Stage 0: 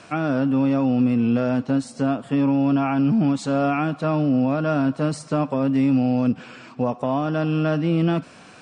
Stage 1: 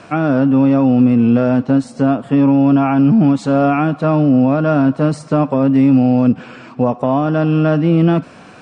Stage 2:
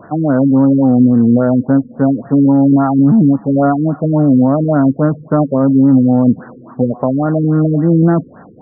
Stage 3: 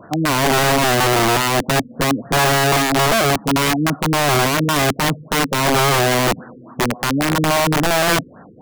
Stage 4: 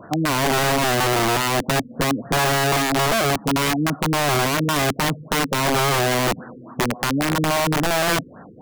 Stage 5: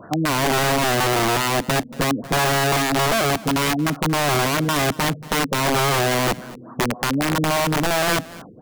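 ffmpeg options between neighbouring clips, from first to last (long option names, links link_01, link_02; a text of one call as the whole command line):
ffmpeg -i in.wav -af "highshelf=frequency=2500:gain=-9,volume=8dB" out.wav
ffmpeg -i in.wav -af "afftfilt=real='re*lt(b*sr/1024,470*pow(2000/470,0.5+0.5*sin(2*PI*3.6*pts/sr)))':imag='im*lt(b*sr/1024,470*pow(2000/470,0.5+0.5*sin(2*PI*3.6*pts/sr)))':win_size=1024:overlap=0.75,volume=2dB" out.wav
ffmpeg -i in.wav -af "aeval=exprs='(mod(2.37*val(0)+1,2)-1)/2.37':channel_layout=same,volume=-3.5dB" out.wav
ffmpeg -i in.wav -af "acompressor=threshold=-19dB:ratio=2.5" out.wav
ffmpeg -i in.wav -af "aecho=1:1:230:0.1" out.wav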